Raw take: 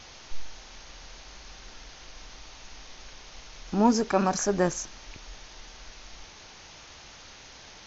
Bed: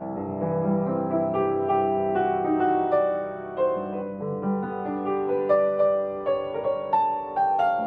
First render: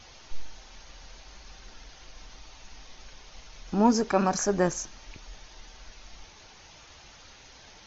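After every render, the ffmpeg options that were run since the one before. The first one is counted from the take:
-af "afftdn=nr=6:nf=-49"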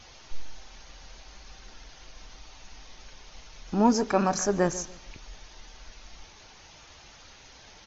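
-filter_complex "[0:a]asplit=2[a][b];[b]adelay=143,lowpass=f=2k:p=1,volume=-16dB,asplit=2[c][d];[d]adelay=143,lowpass=f=2k:p=1,volume=0.31,asplit=2[e][f];[f]adelay=143,lowpass=f=2k:p=1,volume=0.31[g];[a][c][e][g]amix=inputs=4:normalize=0"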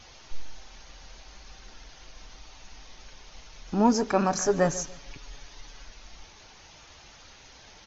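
-filter_complex "[0:a]asettb=1/sr,asplit=3[a][b][c];[a]atrim=end=4.454[d];[b]atrim=start=4.45:end=5.85,asetpts=PTS-STARTPTS,afade=t=in:d=0.004:c=qsin,afade=t=out:st=1.396:d=0.004:c=qsin,aecho=1:1:7.1:0.65,atrim=end_sample=61740[e];[c]atrim=start=5.846[f];[d][e]acrossfade=d=0.004:c1=hsin:c2=qsin[g];[g][f]acrossfade=d=0.004:c1=qsin:c2=hsin"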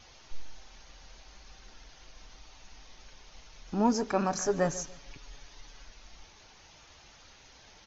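-af "volume=-4.5dB"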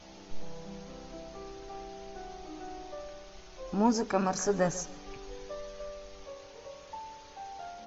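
-filter_complex "[1:a]volume=-21.5dB[a];[0:a][a]amix=inputs=2:normalize=0"

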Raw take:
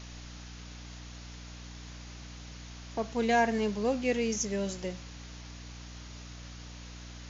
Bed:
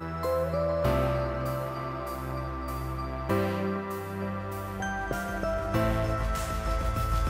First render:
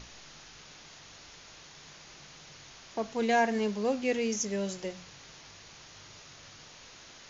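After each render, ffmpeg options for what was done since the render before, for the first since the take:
-af "bandreject=f=60:t=h:w=6,bandreject=f=120:t=h:w=6,bandreject=f=180:t=h:w=6,bandreject=f=240:t=h:w=6,bandreject=f=300:t=h:w=6"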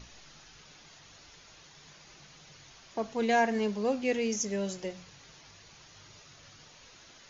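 -af "afftdn=nr=6:nf=-52"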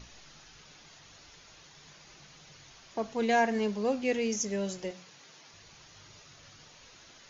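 -filter_complex "[0:a]asettb=1/sr,asplit=3[a][b][c];[a]atrim=end=4.914[d];[b]atrim=start=4.91:end=5.54,asetpts=PTS-STARTPTS,afade=t=in:d=0.004:c=qsin,afade=t=out:st=0.626:d=0.004:c=qsin,highpass=200[e];[c]atrim=start=5.536[f];[d][e]acrossfade=d=0.004:c1=hsin:c2=qsin[g];[g][f]acrossfade=d=0.004:c1=qsin:c2=hsin"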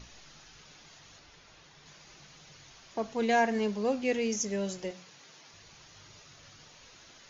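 -filter_complex "[0:a]asettb=1/sr,asplit=3[a][b][c];[a]atrim=end=1.194[d];[b]atrim=start=1.19:end=1.86,asetpts=PTS-STARTPTS,afade=t=in:d=0.004:c=qsin,afade=t=out:st=0.666:d=0.004:c=qsin,lowpass=f=4k:p=1[e];[c]atrim=start=1.856[f];[d][e]acrossfade=d=0.004:c1=hsin:c2=qsin[g];[g][f]acrossfade=d=0.004:c1=qsin:c2=hsin"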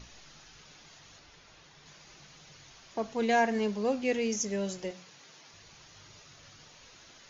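-af anull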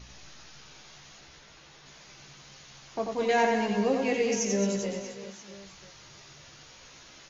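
-filter_complex "[0:a]asplit=2[a][b];[b]adelay=15,volume=-5dB[c];[a][c]amix=inputs=2:normalize=0,aecho=1:1:90|216|392.4|639.4|985.1:0.631|0.398|0.251|0.158|0.1"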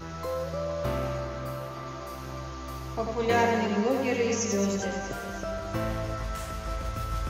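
-filter_complex "[1:a]volume=-4dB[a];[0:a][a]amix=inputs=2:normalize=0"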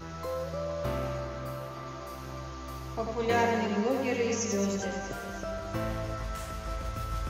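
-af "volume=-2.5dB"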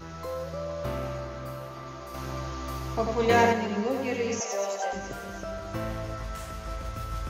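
-filter_complex "[0:a]asettb=1/sr,asplit=3[a][b][c];[a]atrim=end=2.144[d];[b]atrim=start=2.14:end=3.53,asetpts=PTS-STARTPTS,afade=t=in:d=0.004:c=qsin,afade=t=out:st=1.386:d=0.004:c=qsin,acontrast=37[e];[c]atrim=start=3.526[f];[d][e]acrossfade=d=0.004:c1=hsin:c2=qsin[g];[g][f]acrossfade=d=0.004:c1=qsin:c2=hsin,asettb=1/sr,asplit=3[h][i][j];[h]atrim=end=4.404[k];[i]atrim=start=4.4:end=4.93,asetpts=PTS-STARTPTS,afade=t=in:d=0.004:c=qsin,afade=t=out:st=0.526:d=0.004:c=qsin,highpass=f=700:t=q:w=4.3[l];[j]atrim=start=4.926[m];[k][l]acrossfade=d=0.004:c1=hsin:c2=qsin[n];[n][m]acrossfade=d=0.004:c1=qsin:c2=hsin"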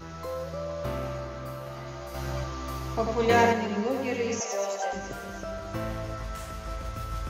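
-filter_complex "[0:a]asettb=1/sr,asplit=3[a][b][c];[a]atrim=end=1.654[d];[b]atrim=start=1.65:end=2.44,asetpts=PTS-STARTPTS,afade=t=in:d=0.004:c=qsin,afade=t=out:st=0.786:d=0.004:c=qsin,asplit=2[e][f];[f]adelay=14,volume=-2.5dB[g];[e][g]amix=inputs=2:normalize=0,atrim=end_sample=34839[h];[c]atrim=start=2.436[i];[d][h]acrossfade=d=0.004:c1=hsin:c2=qsin[j];[j][i]acrossfade=d=0.004:c1=qsin:c2=hsin"

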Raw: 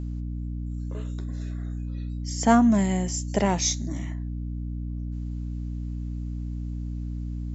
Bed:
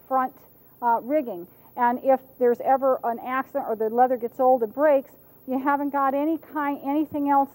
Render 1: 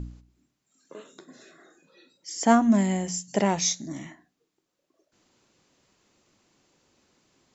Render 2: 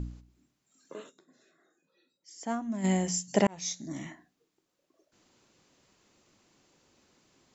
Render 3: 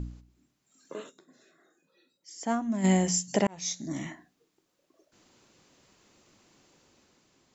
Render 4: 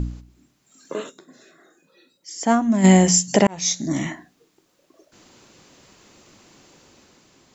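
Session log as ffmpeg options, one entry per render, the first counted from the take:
-af "bandreject=f=60:t=h:w=4,bandreject=f=120:t=h:w=4,bandreject=f=180:t=h:w=4,bandreject=f=240:t=h:w=4,bandreject=f=300:t=h:w=4"
-filter_complex "[0:a]asplit=4[a][b][c][d];[a]atrim=end=1.22,asetpts=PTS-STARTPTS,afade=t=out:st=1.09:d=0.13:c=exp:silence=0.188365[e];[b]atrim=start=1.22:end=2.72,asetpts=PTS-STARTPTS,volume=-14.5dB[f];[c]atrim=start=2.72:end=3.47,asetpts=PTS-STARTPTS,afade=t=in:d=0.13:c=exp:silence=0.188365,afade=t=out:st=0.746:d=0.004:c=hsin[g];[d]atrim=start=3.47,asetpts=PTS-STARTPTS,afade=t=in:d=0.61[h];[e][f][g][h]concat=n=4:v=0:a=1"
-af "dynaudnorm=f=120:g=11:m=4dB,alimiter=limit=-12dB:level=0:latency=1:release=428"
-af "volume=11dB,alimiter=limit=-3dB:level=0:latency=1"

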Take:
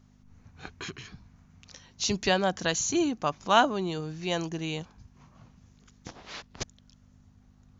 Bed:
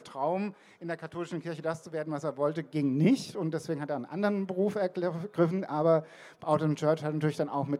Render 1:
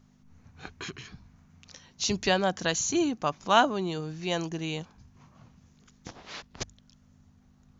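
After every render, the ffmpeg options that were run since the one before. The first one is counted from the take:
-af "bandreject=f=50:t=h:w=4,bandreject=f=100:t=h:w=4"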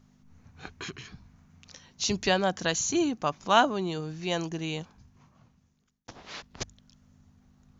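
-filter_complex "[0:a]asplit=2[a][b];[a]atrim=end=6.08,asetpts=PTS-STARTPTS,afade=t=out:st=4.82:d=1.26[c];[b]atrim=start=6.08,asetpts=PTS-STARTPTS,afade=t=in:d=0.004:c=hsin[d];[c][d]concat=n=2:v=0:a=1"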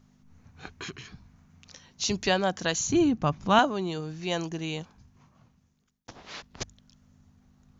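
-filter_complex "[0:a]asettb=1/sr,asplit=3[a][b][c];[a]atrim=end=2.874[d];[b]atrim=start=2.87:end=3.59,asetpts=PTS-STARTPTS,afade=t=in:d=0.004:c=qsin,afade=t=out:st=0.716:d=0.004:c=qsin,bass=f=250:g=13,treble=f=4k:g=-6[e];[c]atrim=start=3.586[f];[d][e]acrossfade=d=0.004:c1=hsin:c2=qsin[g];[g][f]acrossfade=d=0.004:c1=qsin:c2=hsin"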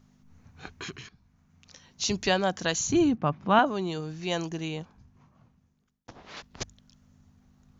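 -filter_complex "[0:a]asplit=3[a][b][c];[a]afade=t=out:st=3.15:d=0.02[d];[b]highpass=120,lowpass=2.6k,afade=t=in:st=3.15:d=0.02,afade=t=out:st=3.65:d=0.02[e];[c]afade=t=in:st=3.65:d=0.02[f];[d][e][f]amix=inputs=3:normalize=0,asettb=1/sr,asplit=3[g][h][i];[g]atrim=end=4.684[j];[h]atrim=start=4.68:end=6.37,asetpts=PTS-STARTPTS,afade=t=in:d=0.004:c=qsin,afade=t=out:st=1.686:d=0.004:c=qsin,highshelf=f=2.7k:g=-8[k];[i]atrim=start=6.366[l];[j][k]acrossfade=d=0.004:c1=hsin:c2=qsin[m];[m][l]acrossfade=d=0.004:c1=qsin:c2=hsin,asplit=2[n][o];[n]atrim=end=1.09,asetpts=PTS-STARTPTS,afade=t=out:st=1.086:d=0.004:c=hsin:silence=0.188365[p];[o]atrim=start=1.09,asetpts=PTS-STARTPTS,afade=t=in:d=0.93:silence=0.188365[q];[p][q]concat=n=2:v=0:a=1"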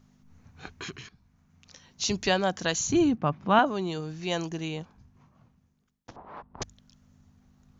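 -filter_complex "[0:a]asettb=1/sr,asplit=3[a][b][c];[a]atrim=end=6.164[d];[b]atrim=start=6.16:end=6.62,asetpts=PTS-STARTPTS,afade=t=in:d=0.004:c=qsin,afade=t=out:st=0.456:d=0.004:c=qsin,lowpass=f=980:t=q:w=2.5[e];[c]atrim=start=6.616[f];[d][e]acrossfade=d=0.004:c1=hsin:c2=qsin[g];[g][f]acrossfade=d=0.004:c1=qsin:c2=hsin"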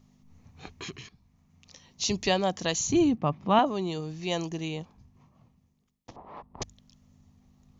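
-af "equalizer=f=1.5k:w=5.2:g=-12.5"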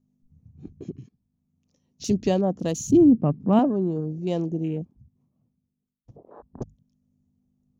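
-af "afwtdn=0.01,equalizer=f=125:t=o:w=1:g=5,equalizer=f=250:t=o:w=1:g=9,equalizer=f=500:t=o:w=1:g=4,equalizer=f=1k:t=o:w=1:g=-6,equalizer=f=2k:t=o:w=1:g=-8,equalizer=f=4k:t=o:w=1:g=-9"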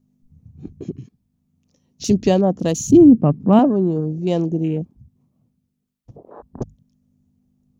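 -af "volume=6.5dB,alimiter=limit=-1dB:level=0:latency=1"

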